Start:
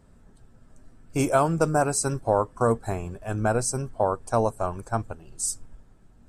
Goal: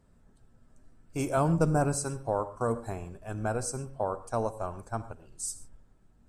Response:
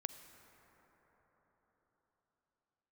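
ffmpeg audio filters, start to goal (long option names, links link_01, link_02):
-filter_complex "[0:a]asettb=1/sr,asplit=3[link_01][link_02][link_03];[link_01]atrim=end=1.374[link_04];[link_02]atrim=start=1.37:end=1.97,asetpts=PTS-STARTPTS,afade=type=in:duration=0.004:curve=qsin,afade=type=out:start_time=0.596:duration=0.004:curve=qsin,lowshelf=frequency=290:gain=11[link_05];[link_03]atrim=start=1.966[link_06];[link_04][link_05]acrossfade=duration=0.004:curve1=hsin:curve2=qsin[link_07];[link_07][link_06]acrossfade=duration=0.004:curve1=qsin:curve2=hsin[link_08];[1:a]atrim=start_sample=2205,atrim=end_sample=6174,asetrate=41454,aresample=44100[link_09];[link_08][link_09]afir=irnorm=-1:irlink=0,volume=-5dB"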